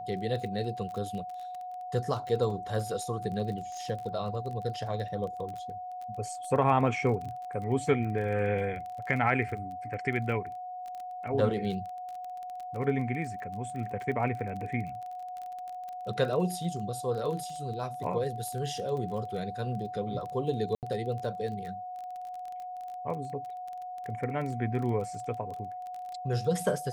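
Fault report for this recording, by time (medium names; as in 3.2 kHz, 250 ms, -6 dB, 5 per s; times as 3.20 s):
crackle 22 per s -36 dBFS
whine 730 Hz -37 dBFS
20.75–20.83 s: dropout 78 ms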